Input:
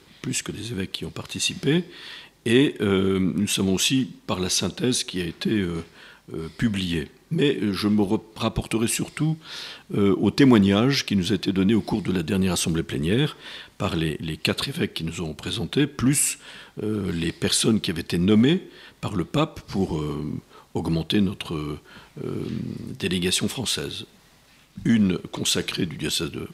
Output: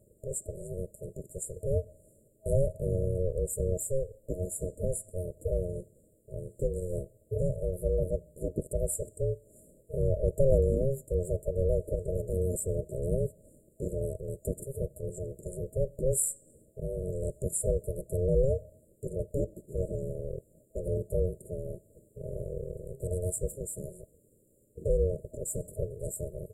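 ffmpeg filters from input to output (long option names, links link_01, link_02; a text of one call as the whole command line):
ffmpeg -i in.wav -af "aeval=exprs='val(0)*sin(2*PI*270*n/s)':channel_layout=same,afftfilt=real='re*(1-between(b*sr/4096,640,7000))':imag='im*(1-between(b*sr/4096,640,7000))':win_size=4096:overlap=0.75,volume=-4dB" out.wav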